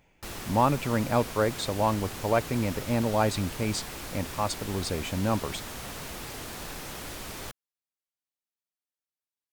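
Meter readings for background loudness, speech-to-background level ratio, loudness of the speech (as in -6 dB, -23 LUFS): -38.0 LUFS, 9.5 dB, -28.5 LUFS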